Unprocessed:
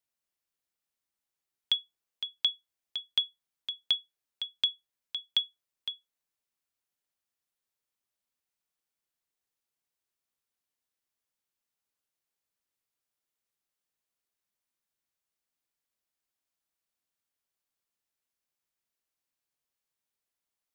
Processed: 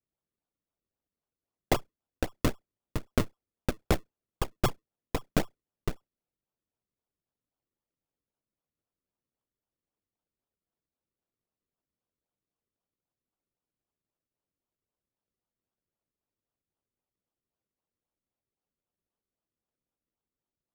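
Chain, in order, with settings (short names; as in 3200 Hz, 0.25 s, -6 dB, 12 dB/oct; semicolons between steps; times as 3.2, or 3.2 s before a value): decimation with a swept rate 39×, swing 100% 3.8 Hz; added harmonics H 3 -20 dB, 7 -29 dB, 8 -6 dB, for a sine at -15.5 dBFS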